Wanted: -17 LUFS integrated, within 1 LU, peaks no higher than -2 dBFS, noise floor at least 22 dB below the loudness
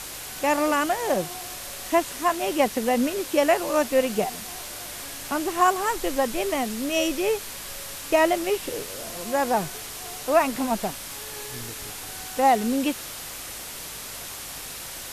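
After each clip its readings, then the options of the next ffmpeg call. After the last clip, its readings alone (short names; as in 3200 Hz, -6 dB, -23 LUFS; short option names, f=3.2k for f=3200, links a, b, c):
hum 50 Hz; harmonics up to 150 Hz; hum level -54 dBFS; noise floor -37 dBFS; noise floor target -48 dBFS; loudness -25.5 LUFS; peak -8.5 dBFS; loudness target -17.0 LUFS
-> -af "bandreject=f=50:t=h:w=4,bandreject=f=100:t=h:w=4,bandreject=f=150:t=h:w=4"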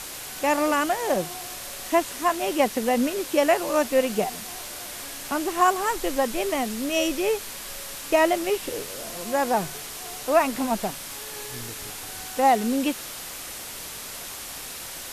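hum none; noise floor -37 dBFS; noise floor target -48 dBFS
-> -af "afftdn=nr=11:nf=-37"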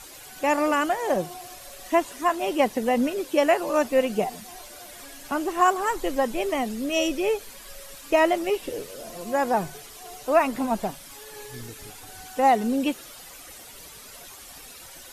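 noise floor -45 dBFS; noise floor target -47 dBFS
-> -af "afftdn=nr=6:nf=-45"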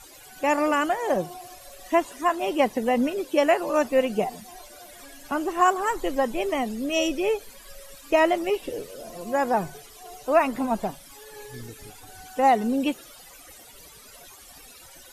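noise floor -48 dBFS; loudness -24.5 LUFS; peak -8.5 dBFS; loudness target -17.0 LUFS
-> -af "volume=7.5dB,alimiter=limit=-2dB:level=0:latency=1"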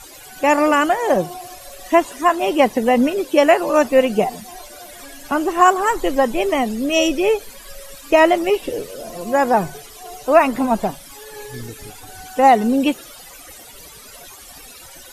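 loudness -17.0 LUFS; peak -2.0 dBFS; noise floor -41 dBFS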